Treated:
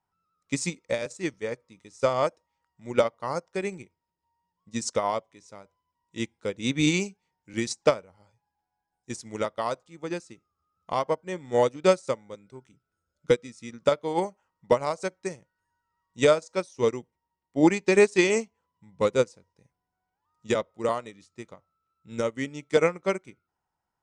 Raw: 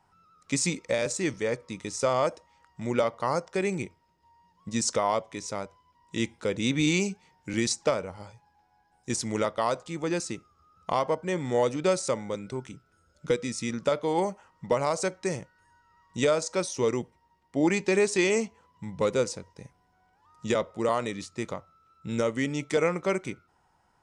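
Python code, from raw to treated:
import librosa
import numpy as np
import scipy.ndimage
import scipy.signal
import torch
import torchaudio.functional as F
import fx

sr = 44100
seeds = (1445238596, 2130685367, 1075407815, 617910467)

y = fx.upward_expand(x, sr, threshold_db=-35.0, expansion=2.5)
y = F.gain(torch.from_numpy(y), 6.5).numpy()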